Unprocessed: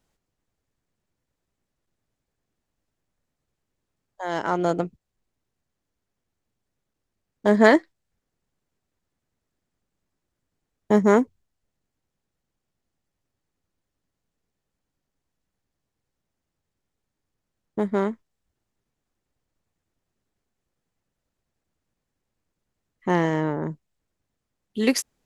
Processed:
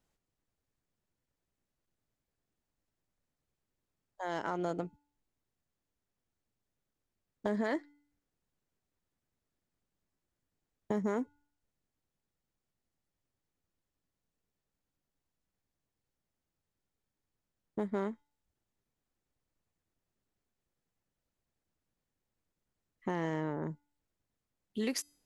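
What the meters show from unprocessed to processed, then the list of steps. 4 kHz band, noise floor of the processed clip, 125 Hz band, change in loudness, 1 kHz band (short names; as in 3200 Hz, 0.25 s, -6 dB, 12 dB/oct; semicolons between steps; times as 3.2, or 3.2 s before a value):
-12.0 dB, under -85 dBFS, -12.0 dB, -14.5 dB, -13.5 dB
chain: limiter -13 dBFS, peak gain reduction 9.5 dB; resonator 290 Hz, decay 0.58 s, harmonics odd, mix 30%; compressor 2:1, threshold -30 dBFS, peak gain reduction 6 dB; gain -3.5 dB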